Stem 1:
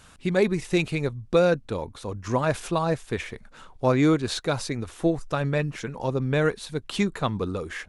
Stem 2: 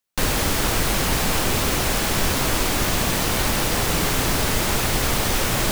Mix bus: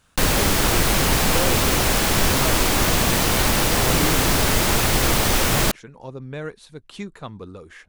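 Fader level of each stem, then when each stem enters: -9.0, +2.5 dB; 0.00, 0.00 s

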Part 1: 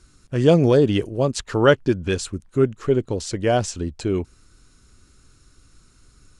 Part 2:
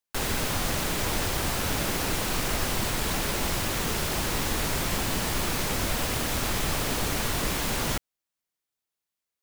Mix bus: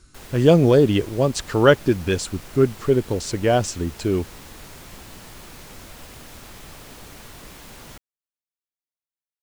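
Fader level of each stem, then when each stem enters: +1.0, -14.0 dB; 0.00, 0.00 s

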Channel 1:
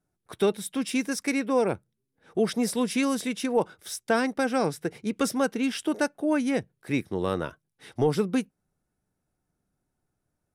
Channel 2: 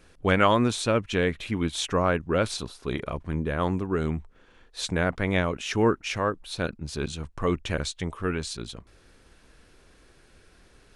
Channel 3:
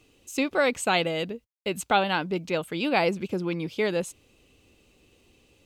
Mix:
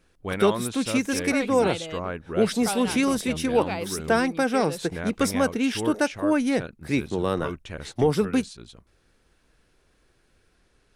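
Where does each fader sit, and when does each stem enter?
+2.5, -8.0, -8.5 dB; 0.00, 0.00, 0.75 s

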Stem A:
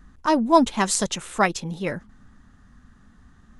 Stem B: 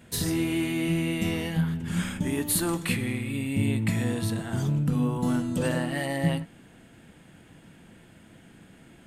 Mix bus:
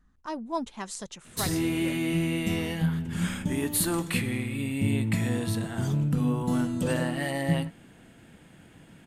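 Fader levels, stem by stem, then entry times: -15.0, -0.5 dB; 0.00, 1.25 s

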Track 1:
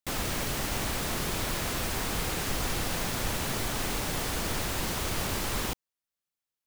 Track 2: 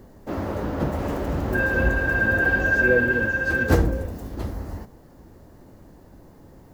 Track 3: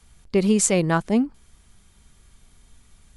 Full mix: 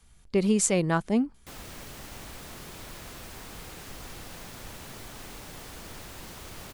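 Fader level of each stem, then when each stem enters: -12.0 dB, off, -4.5 dB; 1.40 s, off, 0.00 s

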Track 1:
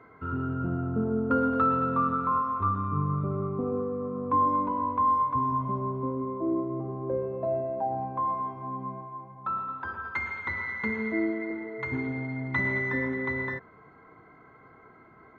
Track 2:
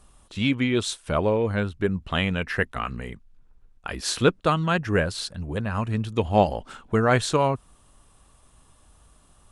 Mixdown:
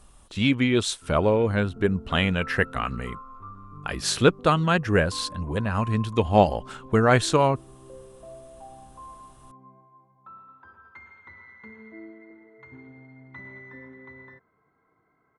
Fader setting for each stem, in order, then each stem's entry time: -15.5, +1.5 dB; 0.80, 0.00 s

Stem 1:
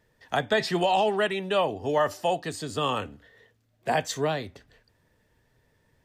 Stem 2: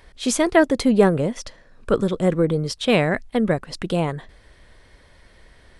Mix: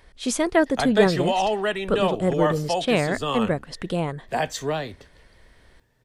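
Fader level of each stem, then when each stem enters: +0.5, -3.5 dB; 0.45, 0.00 s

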